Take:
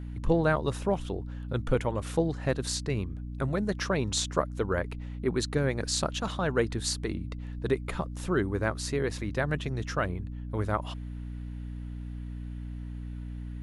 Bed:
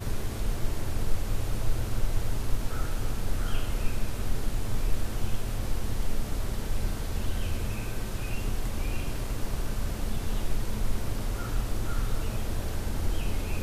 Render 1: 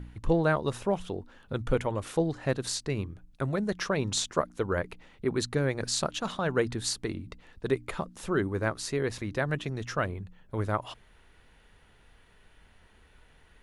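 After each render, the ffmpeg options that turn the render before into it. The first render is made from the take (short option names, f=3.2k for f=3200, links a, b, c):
-af "bandreject=f=60:t=h:w=4,bandreject=f=120:t=h:w=4,bandreject=f=180:t=h:w=4,bandreject=f=240:t=h:w=4,bandreject=f=300:t=h:w=4"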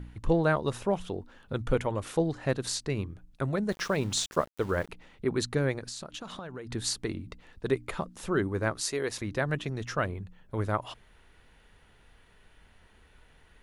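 -filter_complex "[0:a]asettb=1/sr,asplit=3[a][b][c];[a]atrim=end=3.694[d];[b]atrim=start=3.69:end=4.89,asetpts=PTS-STARTPTS,afade=t=in:d=0.004:c=qsin,afade=t=out:st=1.196:d=0.004:c=qsin,aeval=exprs='val(0)*gte(abs(val(0)),0.00708)':c=same[e];[c]atrim=start=4.886[f];[d][e]acrossfade=d=0.004:c1=hsin:c2=qsin[g];[g][f]acrossfade=d=0.004:c1=qsin:c2=hsin,asplit=3[h][i][j];[h]afade=t=out:st=5.78:d=0.02[k];[i]acompressor=threshold=-36dB:ratio=12:attack=3.2:release=140:knee=1:detection=peak,afade=t=in:st=5.78:d=0.02,afade=t=out:st=6.7:d=0.02[l];[j]afade=t=in:st=6.7:d=0.02[m];[k][l][m]amix=inputs=3:normalize=0,asettb=1/sr,asplit=3[n][o][p];[n]atrim=end=8.814[q];[o]atrim=start=8.81:end=9.21,asetpts=PTS-STARTPTS,afade=t=in:d=0.004:c=qsin,afade=t=out:st=0.396:d=0.004:c=qsin,bass=f=250:g=-10,treble=f=4k:g=6[r];[p]atrim=start=9.206[s];[q][r]acrossfade=d=0.004:c1=hsin:c2=qsin[t];[t][s]acrossfade=d=0.004:c1=qsin:c2=hsin"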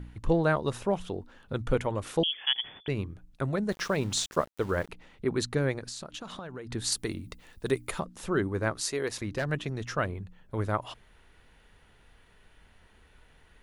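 -filter_complex "[0:a]asettb=1/sr,asplit=3[a][b][c];[a]atrim=end=2.234[d];[b]atrim=start=2.23:end=2.88,asetpts=PTS-STARTPTS,afade=t=in:d=0.004:c=qsin,afade=t=out:st=0.646:d=0.004:c=qsin,lowpass=f=3k:t=q:w=0.5098,lowpass=f=3k:t=q:w=0.6013,lowpass=f=3k:t=q:w=0.9,lowpass=f=3k:t=q:w=2.563,afreqshift=-3500[e];[c]atrim=start=2.876[f];[d][e]acrossfade=d=0.004:c1=hsin:c2=qsin[g];[g][f]acrossfade=d=0.004:c1=qsin:c2=hsin,asettb=1/sr,asplit=3[h][i][j];[h]atrim=end=6.924[k];[i]atrim=start=6.92:end=8,asetpts=PTS-STARTPTS,afade=t=in:d=0.004:c=qsin,afade=t=out:st=1.076:d=0.004:c=qsin,aemphasis=mode=production:type=50fm[l];[j]atrim=start=7.996[m];[k][l]acrossfade=d=0.004:c1=hsin:c2=qsin[n];[n][m]acrossfade=d=0.004:c1=qsin:c2=hsin,asettb=1/sr,asplit=3[o][p][q];[o]atrim=end=9.074[r];[p]atrim=start=9.07:end=9.5,asetpts=PTS-STARTPTS,afade=t=in:d=0.004:c=qsin,afade=t=out:st=0.426:d=0.004:c=qsin,asoftclip=type=hard:threshold=-24.5dB[s];[q]atrim=start=9.496[t];[r][s]acrossfade=d=0.004:c1=hsin:c2=qsin[u];[u][t]acrossfade=d=0.004:c1=qsin:c2=hsin"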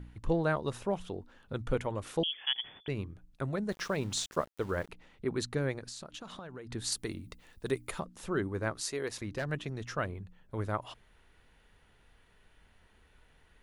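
-af "volume=-4.5dB"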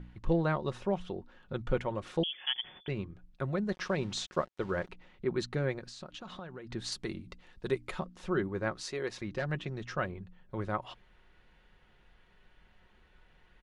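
-af "lowpass=4.8k,aecho=1:1:5.5:0.37"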